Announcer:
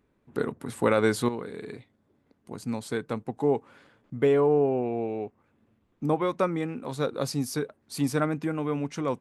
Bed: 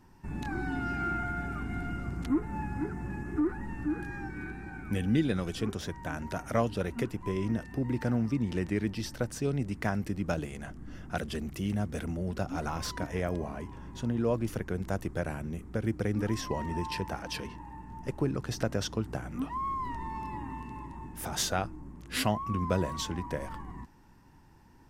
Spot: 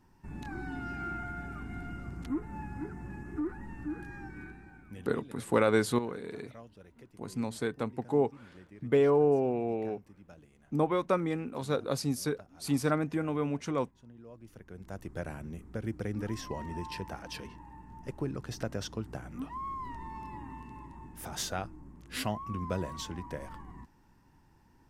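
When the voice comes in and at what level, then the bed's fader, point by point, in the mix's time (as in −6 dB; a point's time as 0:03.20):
4.70 s, −2.5 dB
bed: 0:04.40 −5.5 dB
0:05.37 −22.5 dB
0:14.30 −22.5 dB
0:15.19 −5 dB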